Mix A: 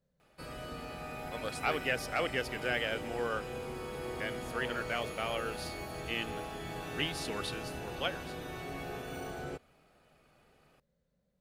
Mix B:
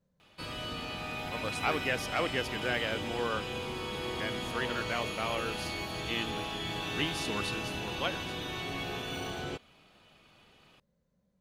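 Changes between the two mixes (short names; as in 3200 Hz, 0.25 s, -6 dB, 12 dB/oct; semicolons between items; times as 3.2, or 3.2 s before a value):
background: add bell 3300 Hz +14 dB 1.1 oct; master: add thirty-one-band EQ 100 Hz +10 dB, 200 Hz +7 dB, 315 Hz +5 dB, 1000 Hz +7 dB, 6300 Hz +4 dB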